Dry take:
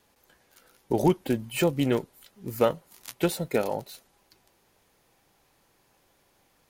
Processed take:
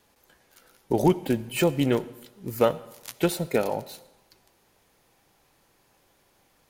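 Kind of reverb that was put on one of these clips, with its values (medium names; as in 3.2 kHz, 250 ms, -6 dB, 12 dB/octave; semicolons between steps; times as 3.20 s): algorithmic reverb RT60 0.94 s, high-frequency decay 0.9×, pre-delay 20 ms, DRR 17 dB; trim +1.5 dB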